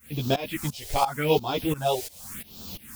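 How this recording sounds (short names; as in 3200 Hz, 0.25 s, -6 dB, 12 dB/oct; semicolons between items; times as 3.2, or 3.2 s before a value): a quantiser's noise floor 8-bit, dither triangular; phasing stages 4, 0.86 Hz, lowest notch 200–2000 Hz; tremolo saw up 2.9 Hz, depth 95%; a shimmering, thickened sound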